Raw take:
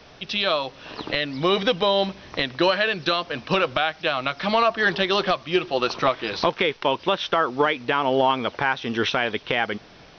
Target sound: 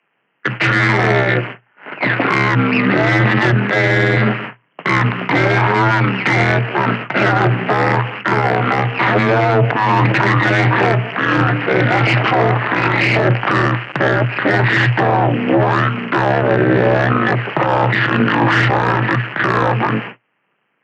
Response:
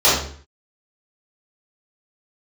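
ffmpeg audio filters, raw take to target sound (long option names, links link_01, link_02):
-af "agate=range=-39dB:threshold=-35dB:ratio=16:detection=peak,crystalizer=i=9.5:c=0,aeval=exprs='(tanh(7.08*val(0)+0.8)-tanh(0.8))/7.08':channel_layout=same,aemphasis=mode=reproduction:type=50fm,asetrate=21565,aresample=44100,tremolo=f=210:d=0.824,afreqshift=120,alimiter=level_in=26.5dB:limit=-1dB:release=50:level=0:latency=1,volume=-4dB"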